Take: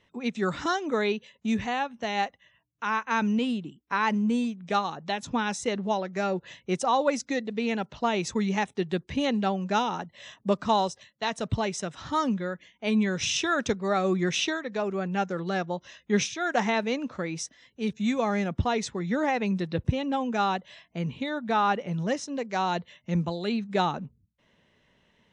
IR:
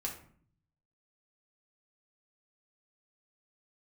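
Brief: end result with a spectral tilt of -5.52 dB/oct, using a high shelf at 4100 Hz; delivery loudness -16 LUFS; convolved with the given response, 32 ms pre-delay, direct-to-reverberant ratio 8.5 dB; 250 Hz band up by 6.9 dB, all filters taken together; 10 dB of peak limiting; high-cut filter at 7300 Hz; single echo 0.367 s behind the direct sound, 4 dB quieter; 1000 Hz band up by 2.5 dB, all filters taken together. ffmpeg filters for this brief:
-filter_complex "[0:a]lowpass=7.3k,equalizer=f=250:t=o:g=8.5,equalizer=f=1k:t=o:g=3,highshelf=f=4.1k:g=-4.5,alimiter=limit=-17dB:level=0:latency=1,aecho=1:1:367:0.631,asplit=2[a][b];[1:a]atrim=start_sample=2205,adelay=32[c];[b][c]afir=irnorm=-1:irlink=0,volume=-9.5dB[d];[a][d]amix=inputs=2:normalize=0,volume=9dB"

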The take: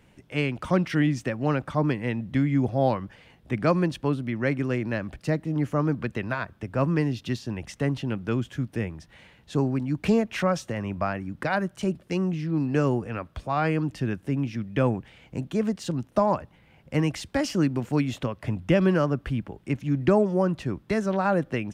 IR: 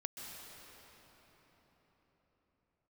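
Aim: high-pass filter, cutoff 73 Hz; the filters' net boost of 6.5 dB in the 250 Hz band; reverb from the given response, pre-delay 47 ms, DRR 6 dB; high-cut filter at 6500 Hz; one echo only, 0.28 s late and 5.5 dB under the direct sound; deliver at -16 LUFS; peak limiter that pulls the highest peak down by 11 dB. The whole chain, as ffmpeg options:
-filter_complex "[0:a]highpass=73,lowpass=6.5k,equalizer=f=250:t=o:g=8.5,alimiter=limit=-16dB:level=0:latency=1,aecho=1:1:280:0.531,asplit=2[a][b];[1:a]atrim=start_sample=2205,adelay=47[c];[b][c]afir=irnorm=-1:irlink=0,volume=-5dB[d];[a][d]amix=inputs=2:normalize=0,volume=7.5dB"

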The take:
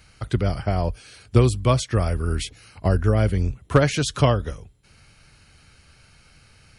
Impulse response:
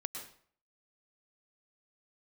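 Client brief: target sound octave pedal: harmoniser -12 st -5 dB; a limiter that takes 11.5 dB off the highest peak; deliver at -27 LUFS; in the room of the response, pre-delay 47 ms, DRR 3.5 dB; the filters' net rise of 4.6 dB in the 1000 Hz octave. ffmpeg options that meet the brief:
-filter_complex "[0:a]equalizer=f=1k:t=o:g=6,alimiter=limit=-13.5dB:level=0:latency=1,asplit=2[a][b];[1:a]atrim=start_sample=2205,adelay=47[c];[b][c]afir=irnorm=-1:irlink=0,volume=-3.5dB[d];[a][d]amix=inputs=2:normalize=0,asplit=2[e][f];[f]asetrate=22050,aresample=44100,atempo=2,volume=-5dB[g];[e][g]amix=inputs=2:normalize=0,volume=-3.5dB"

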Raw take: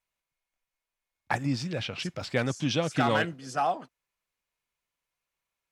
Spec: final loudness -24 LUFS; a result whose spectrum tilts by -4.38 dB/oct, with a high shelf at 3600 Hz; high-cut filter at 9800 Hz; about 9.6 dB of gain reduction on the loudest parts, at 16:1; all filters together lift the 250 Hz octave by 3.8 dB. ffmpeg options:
-af "lowpass=9.8k,equalizer=f=250:t=o:g=4.5,highshelf=f=3.6k:g=7,acompressor=threshold=-27dB:ratio=16,volume=9dB"

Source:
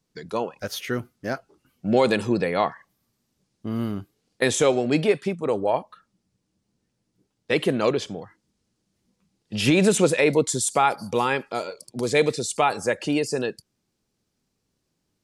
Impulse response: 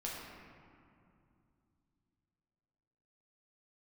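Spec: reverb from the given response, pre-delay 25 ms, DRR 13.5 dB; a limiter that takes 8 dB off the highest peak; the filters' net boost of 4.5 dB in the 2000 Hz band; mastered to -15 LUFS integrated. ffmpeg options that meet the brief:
-filter_complex "[0:a]equalizer=f=2k:t=o:g=5.5,alimiter=limit=-13.5dB:level=0:latency=1,asplit=2[a][b];[1:a]atrim=start_sample=2205,adelay=25[c];[b][c]afir=irnorm=-1:irlink=0,volume=-14.5dB[d];[a][d]amix=inputs=2:normalize=0,volume=11dB"

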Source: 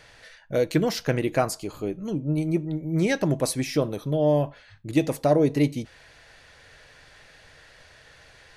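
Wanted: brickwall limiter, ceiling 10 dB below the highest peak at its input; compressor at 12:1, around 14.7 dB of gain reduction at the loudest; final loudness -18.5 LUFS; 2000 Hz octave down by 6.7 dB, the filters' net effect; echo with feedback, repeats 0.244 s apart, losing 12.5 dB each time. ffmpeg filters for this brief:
-af "equalizer=f=2k:t=o:g=-8.5,acompressor=threshold=-31dB:ratio=12,alimiter=level_in=7dB:limit=-24dB:level=0:latency=1,volume=-7dB,aecho=1:1:244|488|732:0.237|0.0569|0.0137,volume=21.5dB"

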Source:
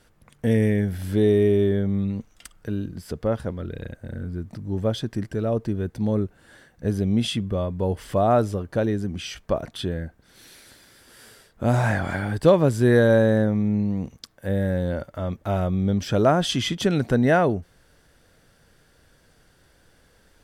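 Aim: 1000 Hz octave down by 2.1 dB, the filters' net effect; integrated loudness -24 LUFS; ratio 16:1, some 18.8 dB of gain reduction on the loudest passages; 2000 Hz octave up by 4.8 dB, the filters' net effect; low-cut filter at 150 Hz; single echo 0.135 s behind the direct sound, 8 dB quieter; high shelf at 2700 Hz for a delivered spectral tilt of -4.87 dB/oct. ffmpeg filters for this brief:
-af "highpass=150,equalizer=f=1k:t=o:g=-6,equalizer=f=2k:t=o:g=7.5,highshelf=f=2.7k:g=3.5,acompressor=threshold=-30dB:ratio=16,aecho=1:1:135:0.398,volume=11.5dB"

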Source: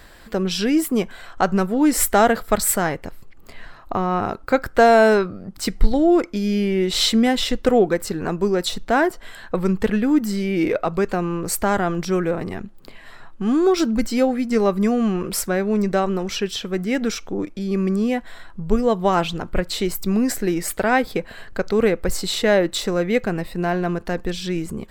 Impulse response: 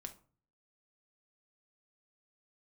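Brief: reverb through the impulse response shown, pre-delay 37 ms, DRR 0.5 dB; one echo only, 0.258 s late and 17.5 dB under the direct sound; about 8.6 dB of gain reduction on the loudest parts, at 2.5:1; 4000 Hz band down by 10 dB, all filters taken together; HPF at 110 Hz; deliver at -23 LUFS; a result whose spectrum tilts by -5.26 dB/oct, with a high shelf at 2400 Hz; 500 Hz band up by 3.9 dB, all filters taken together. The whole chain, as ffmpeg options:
-filter_complex "[0:a]highpass=110,equalizer=f=500:t=o:g=5.5,highshelf=f=2.4k:g=-8.5,equalizer=f=4k:t=o:g=-5,acompressor=threshold=-20dB:ratio=2.5,aecho=1:1:258:0.133,asplit=2[a][b];[1:a]atrim=start_sample=2205,adelay=37[c];[b][c]afir=irnorm=-1:irlink=0,volume=4dB[d];[a][d]amix=inputs=2:normalize=0,volume=-2.5dB"

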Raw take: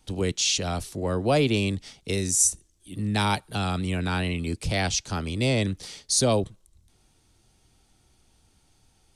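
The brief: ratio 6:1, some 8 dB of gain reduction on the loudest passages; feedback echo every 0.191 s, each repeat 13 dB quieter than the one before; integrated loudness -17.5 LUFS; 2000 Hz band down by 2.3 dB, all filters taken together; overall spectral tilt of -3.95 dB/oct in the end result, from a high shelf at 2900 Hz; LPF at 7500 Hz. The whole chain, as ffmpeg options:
-af "lowpass=7.5k,equalizer=f=2k:t=o:g=-4.5,highshelf=f=2.9k:g=3,acompressor=threshold=-26dB:ratio=6,aecho=1:1:191|382|573:0.224|0.0493|0.0108,volume=13dB"

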